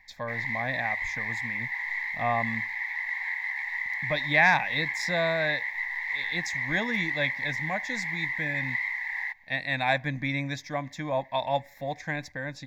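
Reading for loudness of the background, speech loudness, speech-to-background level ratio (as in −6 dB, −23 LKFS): −30.5 LKFS, −29.5 LKFS, 1.0 dB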